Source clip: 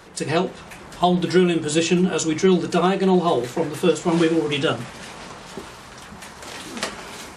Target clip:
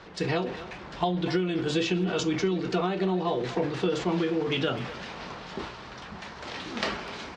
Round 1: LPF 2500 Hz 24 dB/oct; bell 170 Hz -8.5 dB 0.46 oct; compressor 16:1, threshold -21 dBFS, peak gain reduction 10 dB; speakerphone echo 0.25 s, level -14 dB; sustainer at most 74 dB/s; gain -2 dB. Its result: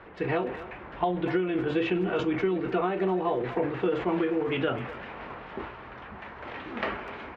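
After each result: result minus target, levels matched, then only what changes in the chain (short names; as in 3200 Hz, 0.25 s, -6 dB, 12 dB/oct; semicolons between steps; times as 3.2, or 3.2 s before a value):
4000 Hz band -8.5 dB; 125 Hz band -4.0 dB
change: LPF 5100 Hz 24 dB/oct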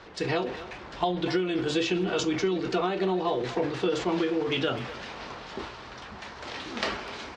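125 Hz band -4.0 dB
remove: bell 170 Hz -8.5 dB 0.46 oct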